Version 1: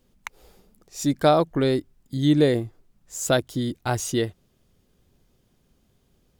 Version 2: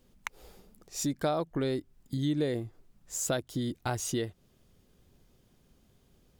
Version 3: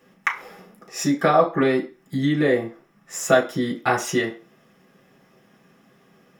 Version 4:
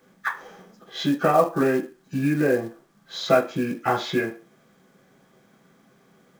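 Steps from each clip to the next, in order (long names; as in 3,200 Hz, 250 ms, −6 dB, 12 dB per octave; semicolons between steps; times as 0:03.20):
downward compressor 2.5 to 1, threshold −32 dBFS, peak gain reduction 13 dB
convolution reverb RT60 0.35 s, pre-delay 3 ms, DRR −4 dB; level +2.5 dB
hearing-aid frequency compression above 1,200 Hz 1.5 to 1; log-companded quantiser 6 bits; level −1.5 dB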